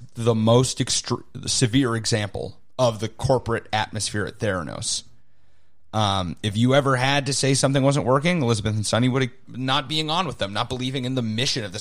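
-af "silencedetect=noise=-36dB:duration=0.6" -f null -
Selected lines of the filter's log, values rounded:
silence_start: 5.07
silence_end: 5.93 | silence_duration: 0.87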